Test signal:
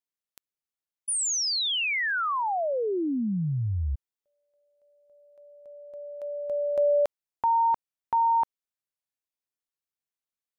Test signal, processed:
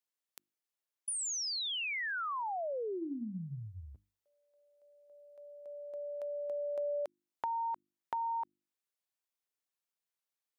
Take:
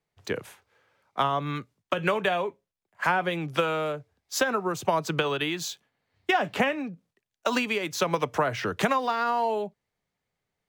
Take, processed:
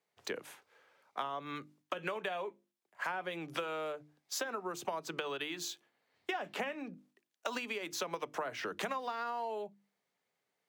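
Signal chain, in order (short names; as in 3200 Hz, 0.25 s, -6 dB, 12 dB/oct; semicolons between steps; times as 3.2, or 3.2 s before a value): HPF 250 Hz 12 dB/oct; notches 50/100/150/200/250/300/350 Hz; compressor 3:1, threshold -39 dBFS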